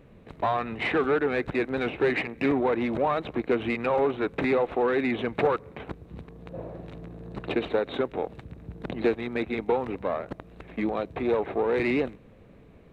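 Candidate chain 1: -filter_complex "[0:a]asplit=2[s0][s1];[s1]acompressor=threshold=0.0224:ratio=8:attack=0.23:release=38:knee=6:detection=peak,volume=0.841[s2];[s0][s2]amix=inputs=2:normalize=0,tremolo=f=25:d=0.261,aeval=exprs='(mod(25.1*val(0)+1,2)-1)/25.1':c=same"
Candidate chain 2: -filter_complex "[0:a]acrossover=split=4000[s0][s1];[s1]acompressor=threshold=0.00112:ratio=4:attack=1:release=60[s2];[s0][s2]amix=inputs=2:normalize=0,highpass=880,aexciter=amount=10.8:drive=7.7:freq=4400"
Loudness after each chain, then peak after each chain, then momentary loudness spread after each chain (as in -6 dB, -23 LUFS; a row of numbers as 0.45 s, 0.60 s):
-33.0 LUFS, -33.5 LUFS; -28.0 dBFS, -18.0 dBFS; 9 LU, 18 LU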